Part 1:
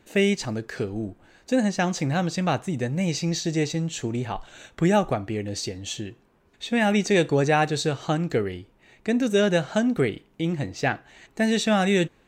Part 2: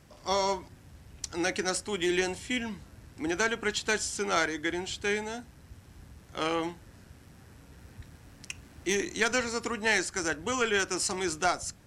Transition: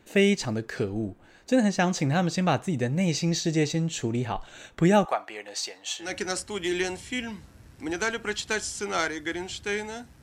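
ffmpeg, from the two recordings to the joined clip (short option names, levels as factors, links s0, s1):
-filter_complex "[0:a]asettb=1/sr,asplit=3[s0][s1][s2];[s0]atrim=end=5.054[s3];[s1]atrim=start=5.05:end=6.15,asetpts=PTS-STARTPTS,afade=t=in:d=0.004:c=qsin,afade=t=out:st=1.096:d=0.004:c=qsin,highpass=f=860:t=q:w=1.7[s4];[s2]atrim=start=6.146[s5];[s3][s4]acrossfade=d=0.004:c1=hsin:c2=qsin[s6];[s6][s5]acrossfade=d=0.004:c1=qsin:c2=hsin,apad=whole_dur=10.22,atrim=end=10.22,atrim=end=6.15,asetpts=PTS-STARTPTS[s7];[1:a]atrim=start=1.37:end=5.6,asetpts=PTS-STARTPTS[s8];[s7][s8]acrossfade=d=0.16:c1=tri:c2=tri"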